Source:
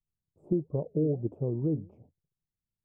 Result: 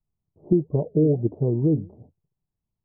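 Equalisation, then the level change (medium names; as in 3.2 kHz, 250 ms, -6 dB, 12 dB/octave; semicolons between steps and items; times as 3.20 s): low-pass 1 kHz 24 dB/octave; band-stop 530 Hz, Q 12; +8.5 dB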